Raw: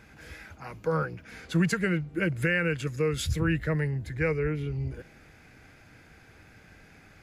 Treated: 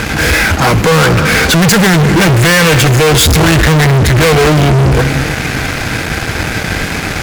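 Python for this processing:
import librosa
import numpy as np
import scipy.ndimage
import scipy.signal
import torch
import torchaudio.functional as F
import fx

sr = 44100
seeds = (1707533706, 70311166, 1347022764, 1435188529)

y = fx.rev_schroeder(x, sr, rt60_s=1.8, comb_ms=26, drr_db=16.5)
y = fx.fuzz(y, sr, gain_db=49.0, gate_db=-57.0)
y = y * 10.0 ** (6.5 / 20.0)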